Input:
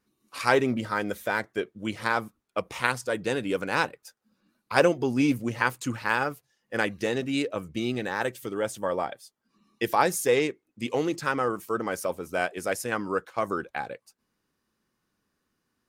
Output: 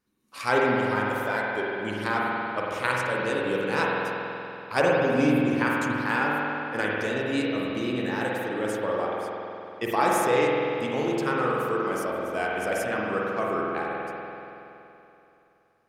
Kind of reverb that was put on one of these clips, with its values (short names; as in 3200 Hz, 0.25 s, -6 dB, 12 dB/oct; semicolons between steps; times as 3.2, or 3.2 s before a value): spring tank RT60 3 s, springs 47 ms, chirp 55 ms, DRR -4 dB; gain -3.5 dB